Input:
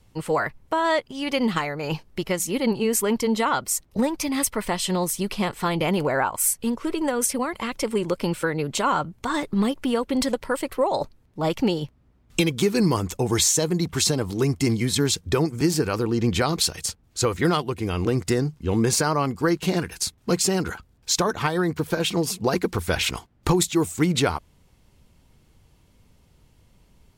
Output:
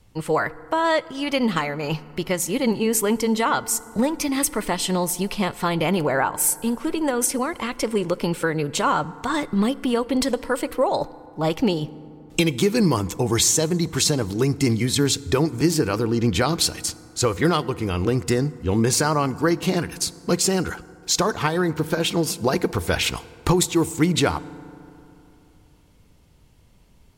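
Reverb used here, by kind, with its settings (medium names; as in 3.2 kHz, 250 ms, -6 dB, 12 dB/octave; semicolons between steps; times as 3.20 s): FDN reverb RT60 3 s, high-frequency decay 0.4×, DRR 18 dB; trim +1.5 dB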